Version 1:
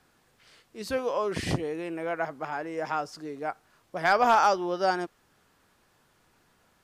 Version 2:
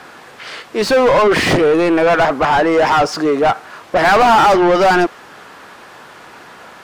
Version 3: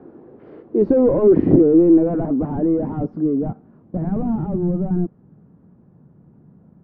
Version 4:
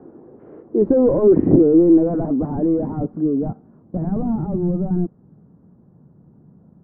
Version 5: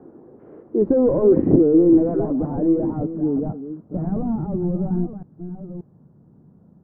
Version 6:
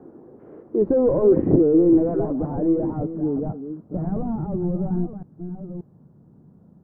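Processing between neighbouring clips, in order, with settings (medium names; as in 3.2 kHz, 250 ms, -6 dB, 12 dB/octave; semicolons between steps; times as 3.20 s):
overdrive pedal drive 31 dB, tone 1.7 kHz, clips at -11.5 dBFS; trim +8 dB
low-pass sweep 340 Hz -> 170 Hz, 0.92–4.83 s; trim -1 dB
low-pass 1.4 kHz 12 dB/octave
chunks repeated in reverse 581 ms, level -11 dB; trim -2 dB
dynamic bell 250 Hz, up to -4 dB, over -31 dBFS, Q 1.8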